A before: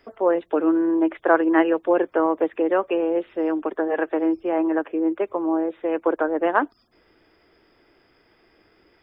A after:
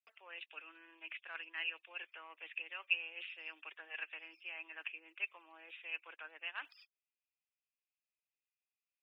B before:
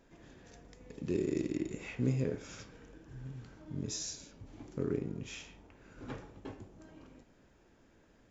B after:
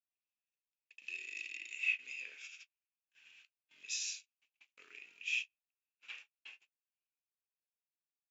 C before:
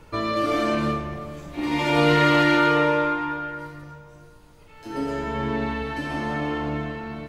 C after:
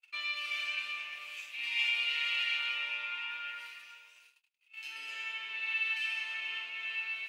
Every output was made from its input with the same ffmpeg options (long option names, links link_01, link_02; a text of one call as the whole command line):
ffmpeg -i in.wav -af "agate=range=-44dB:threshold=-46dB:ratio=16:detection=peak,areverse,acompressor=threshold=-30dB:ratio=6,areverse,highpass=frequency=2600:width_type=q:width=8.5,volume=-1.5dB" out.wav